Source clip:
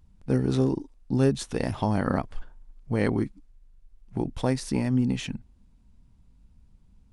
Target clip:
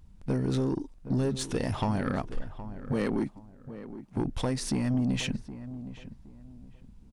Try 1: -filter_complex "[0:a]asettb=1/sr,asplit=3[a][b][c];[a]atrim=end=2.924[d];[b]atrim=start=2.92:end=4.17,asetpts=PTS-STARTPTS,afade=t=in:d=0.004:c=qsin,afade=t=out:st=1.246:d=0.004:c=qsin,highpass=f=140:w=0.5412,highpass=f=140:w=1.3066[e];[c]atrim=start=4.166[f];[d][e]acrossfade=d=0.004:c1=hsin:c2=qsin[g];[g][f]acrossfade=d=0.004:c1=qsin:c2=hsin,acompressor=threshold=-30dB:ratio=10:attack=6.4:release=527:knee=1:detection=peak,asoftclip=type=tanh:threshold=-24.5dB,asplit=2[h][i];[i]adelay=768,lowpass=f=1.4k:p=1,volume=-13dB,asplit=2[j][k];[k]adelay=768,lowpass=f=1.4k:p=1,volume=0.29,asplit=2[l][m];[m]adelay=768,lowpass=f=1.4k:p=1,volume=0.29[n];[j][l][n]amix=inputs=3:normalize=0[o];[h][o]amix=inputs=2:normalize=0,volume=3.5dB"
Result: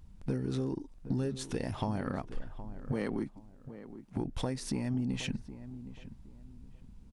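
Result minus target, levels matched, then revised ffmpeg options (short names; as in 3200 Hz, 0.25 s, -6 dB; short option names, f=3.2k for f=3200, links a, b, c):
compressor: peak gain reduction +7.5 dB
-filter_complex "[0:a]asettb=1/sr,asplit=3[a][b][c];[a]atrim=end=2.924[d];[b]atrim=start=2.92:end=4.17,asetpts=PTS-STARTPTS,afade=t=in:d=0.004:c=qsin,afade=t=out:st=1.246:d=0.004:c=qsin,highpass=f=140:w=0.5412,highpass=f=140:w=1.3066[e];[c]atrim=start=4.166[f];[d][e]acrossfade=d=0.004:c1=hsin:c2=qsin[g];[g][f]acrossfade=d=0.004:c1=qsin:c2=hsin,acompressor=threshold=-21.5dB:ratio=10:attack=6.4:release=527:knee=1:detection=peak,asoftclip=type=tanh:threshold=-24.5dB,asplit=2[h][i];[i]adelay=768,lowpass=f=1.4k:p=1,volume=-13dB,asplit=2[j][k];[k]adelay=768,lowpass=f=1.4k:p=1,volume=0.29,asplit=2[l][m];[m]adelay=768,lowpass=f=1.4k:p=1,volume=0.29[n];[j][l][n]amix=inputs=3:normalize=0[o];[h][o]amix=inputs=2:normalize=0,volume=3.5dB"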